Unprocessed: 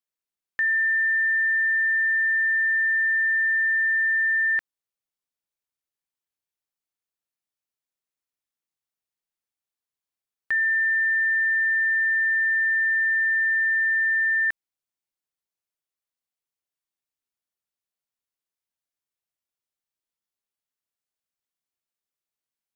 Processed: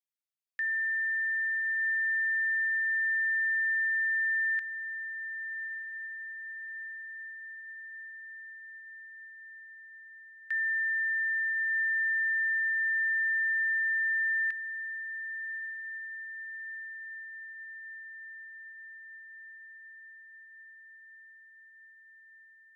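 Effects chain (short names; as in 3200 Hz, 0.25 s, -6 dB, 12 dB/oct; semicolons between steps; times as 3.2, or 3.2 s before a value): HPF 1500 Hz 24 dB/oct; diffused feedback echo 1.204 s, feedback 67%, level -12.5 dB; gain -7.5 dB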